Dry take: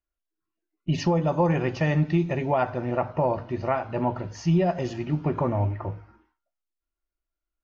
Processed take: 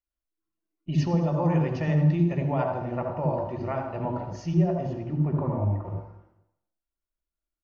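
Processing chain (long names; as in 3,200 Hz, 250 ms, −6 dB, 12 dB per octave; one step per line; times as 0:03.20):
0:04.54–0:05.85: high-shelf EQ 2,300 Hz −11 dB
repeating echo 221 ms, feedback 31%, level −22.5 dB
on a send at −3 dB: convolution reverb RT60 0.70 s, pre-delay 69 ms
on the sum: level −7 dB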